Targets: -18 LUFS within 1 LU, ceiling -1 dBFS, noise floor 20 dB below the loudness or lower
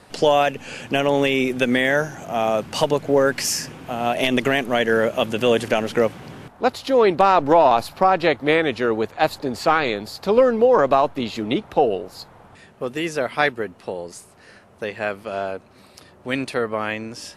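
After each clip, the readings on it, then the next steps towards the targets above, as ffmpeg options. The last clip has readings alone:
loudness -20.5 LUFS; peak -2.0 dBFS; loudness target -18.0 LUFS
-> -af "volume=2.5dB,alimiter=limit=-1dB:level=0:latency=1"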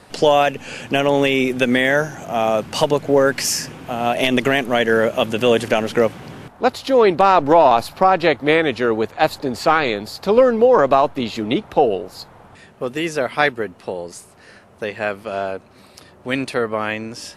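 loudness -18.0 LUFS; peak -1.0 dBFS; noise floor -48 dBFS

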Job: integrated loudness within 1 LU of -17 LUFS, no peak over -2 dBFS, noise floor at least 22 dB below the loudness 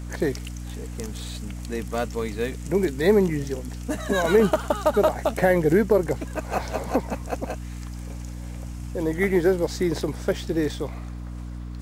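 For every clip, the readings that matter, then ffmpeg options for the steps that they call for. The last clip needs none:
hum 60 Hz; harmonics up to 300 Hz; hum level -32 dBFS; loudness -24.5 LUFS; peak -6.0 dBFS; loudness target -17.0 LUFS
-> -af "bandreject=f=60:t=h:w=4,bandreject=f=120:t=h:w=4,bandreject=f=180:t=h:w=4,bandreject=f=240:t=h:w=4,bandreject=f=300:t=h:w=4"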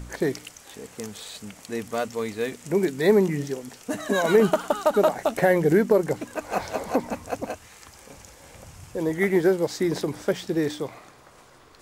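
hum none; loudness -24.5 LUFS; peak -5.5 dBFS; loudness target -17.0 LUFS
-> -af "volume=7.5dB,alimiter=limit=-2dB:level=0:latency=1"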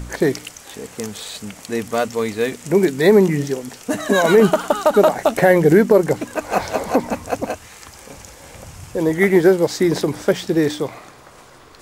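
loudness -17.5 LUFS; peak -2.0 dBFS; noise floor -44 dBFS

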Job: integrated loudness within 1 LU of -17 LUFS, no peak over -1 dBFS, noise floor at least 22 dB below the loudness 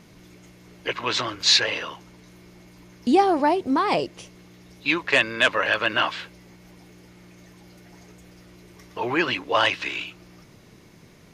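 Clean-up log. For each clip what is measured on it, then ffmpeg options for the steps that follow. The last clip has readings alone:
loudness -22.0 LUFS; peak -8.0 dBFS; loudness target -17.0 LUFS
-> -af "volume=5dB"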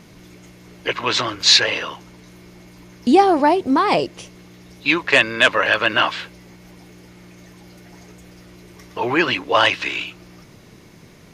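loudness -17.0 LUFS; peak -3.0 dBFS; noise floor -46 dBFS

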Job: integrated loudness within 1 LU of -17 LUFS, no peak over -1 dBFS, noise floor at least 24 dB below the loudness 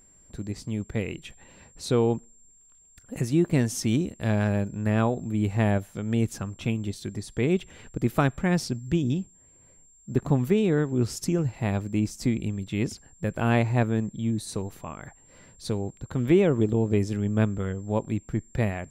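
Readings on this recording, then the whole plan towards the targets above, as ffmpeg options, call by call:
steady tone 7400 Hz; tone level -55 dBFS; loudness -27.0 LUFS; peak -6.5 dBFS; loudness target -17.0 LUFS
-> -af "bandreject=f=7.4k:w=30"
-af "volume=10dB,alimiter=limit=-1dB:level=0:latency=1"

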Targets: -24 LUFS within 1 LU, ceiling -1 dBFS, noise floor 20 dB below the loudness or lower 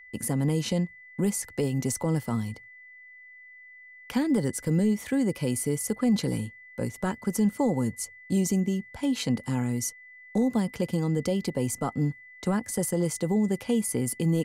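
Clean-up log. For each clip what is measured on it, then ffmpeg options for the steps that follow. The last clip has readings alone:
steady tone 2000 Hz; tone level -47 dBFS; loudness -28.0 LUFS; peak -16.5 dBFS; loudness target -24.0 LUFS
-> -af "bandreject=f=2k:w=30"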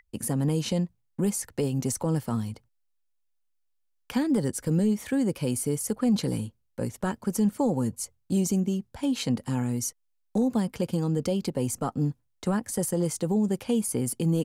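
steady tone none; loudness -28.0 LUFS; peak -16.5 dBFS; loudness target -24.0 LUFS
-> -af "volume=4dB"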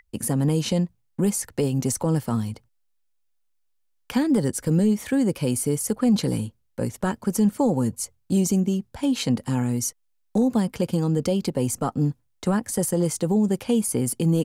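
loudness -24.0 LUFS; peak -12.5 dBFS; noise floor -68 dBFS

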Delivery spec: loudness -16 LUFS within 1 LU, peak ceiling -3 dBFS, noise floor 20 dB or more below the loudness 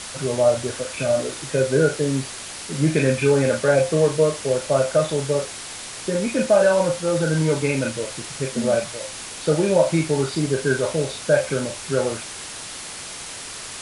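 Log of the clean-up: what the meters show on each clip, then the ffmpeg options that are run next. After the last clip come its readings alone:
noise floor -35 dBFS; noise floor target -42 dBFS; loudness -21.5 LUFS; peak -4.5 dBFS; loudness target -16.0 LUFS
-> -af "afftdn=nr=7:nf=-35"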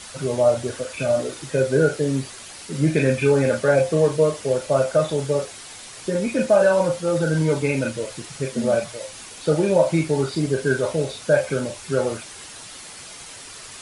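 noise floor -40 dBFS; noise floor target -42 dBFS
-> -af "afftdn=nr=6:nf=-40"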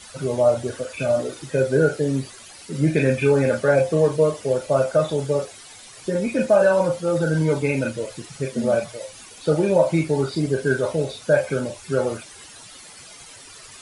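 noise floor -44 dBFS; loudness -21.5 LUFS; peak -4.5 dBFS; loudness target -16.0 LUFS
-> -af "volume=5.5dB,alimiter=limit=-3dB:level=0:latency=1"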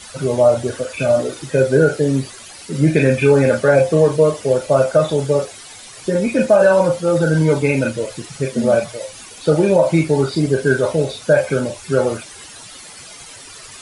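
loudness -16.5 LUFS; peak -3.0 dBFS; noise floor -38 dBFS

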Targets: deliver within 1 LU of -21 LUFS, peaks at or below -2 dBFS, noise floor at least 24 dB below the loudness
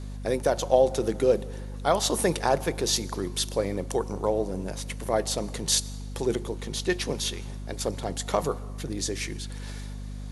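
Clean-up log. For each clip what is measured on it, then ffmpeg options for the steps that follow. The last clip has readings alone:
hum 50 Hz; harmonics up to 250 Hz; hum level -34 dBFS; loudness -27.5 LUFS; peak -7.0 dBFS; loudness target -21.0 LUFS
-> -af "bandreject=f=50:t=h:w=6,bandreject=f=100:t=h:w=6,bandreject=f=150:t=h:w=6,bandreject=f=200:t=h:w=6,bandreject=f=250:t=h:w=6"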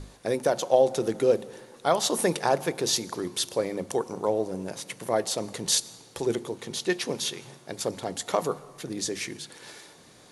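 hum none; loudness -27.5 LUFS; peak -7.5 dBFS; loudness target -21.0 LUFS
-> -af "volume=6.5dB,alimiter=limit=-2dB:level=0:latency=1"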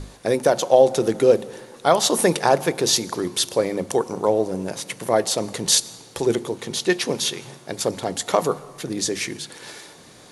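loudness -21.5 LUFS; peak -2.0 dBFS; noise floor -47 dBFS

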